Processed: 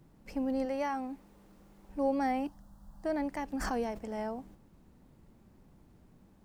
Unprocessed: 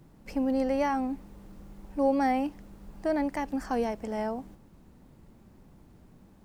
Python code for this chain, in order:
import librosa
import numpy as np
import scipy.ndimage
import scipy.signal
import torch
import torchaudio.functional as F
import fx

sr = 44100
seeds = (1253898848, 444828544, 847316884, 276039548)

y = fx.low_shelf(x, sr, hz=190.0, db=-10.0, at=(0.65, 1.89))
y = fx.fixed_phaser(y, sr, hz=960.0, stages=4, at=(2.47, 3.04))
y = fx.pre_swell(y, sr, db_per_s=26.0, at=(3.55, 3.97), fade=0.02)
y = F.gain(torch.from_numpy(y), -5.0).numpy()